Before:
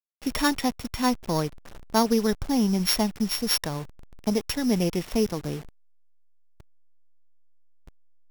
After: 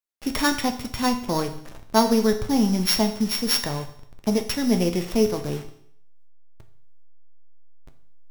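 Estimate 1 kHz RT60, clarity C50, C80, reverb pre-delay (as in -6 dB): 0.65 s, 11.0 dB, 14.0 dB, 8 ms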